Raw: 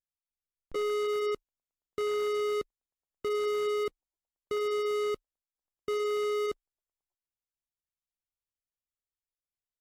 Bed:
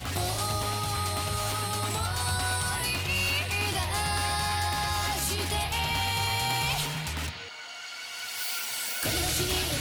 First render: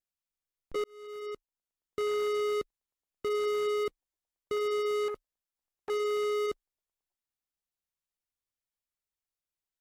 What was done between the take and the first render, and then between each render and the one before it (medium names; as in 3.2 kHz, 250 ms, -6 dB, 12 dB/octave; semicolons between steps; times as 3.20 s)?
0.84–1.99 s: fade in; 5.08–5.90 s: transformer saturation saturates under 840 Hz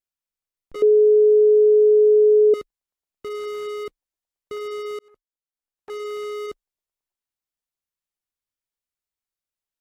0.82–2.54 s: bleep 424 Hz -10.5 dBFS; 4.99–6.06 s: fade in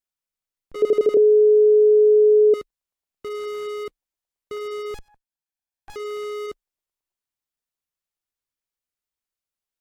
0.77 s: stutter in place 0.08 s, 5 plays; 4.94–5.96 s: comb filter that takes the minimum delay 1.2 ms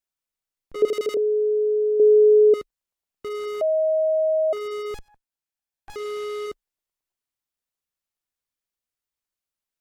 0.88–2.00 s: tilt shelf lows -9.5 dB, about 1.3 kHz; 3.61–4.53 s: bleep 631 Hz -17.5 dBFS; 5.98–6.49 s: CVSD coder 64 kbps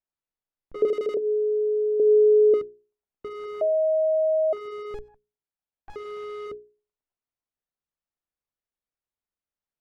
low-pass 1.1 kHz 6 dB/octave; hum notches 60/120/180/240/300/360/420 Hz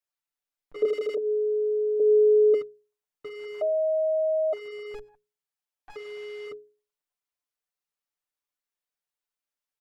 bass shelf 480 Hz -12 dB; comb 6.8 ms, depth 91%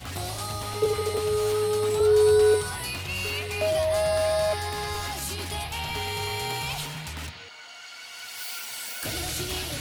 add bed -3 dB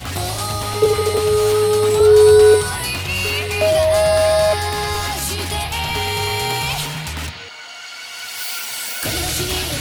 trim +9.5 dB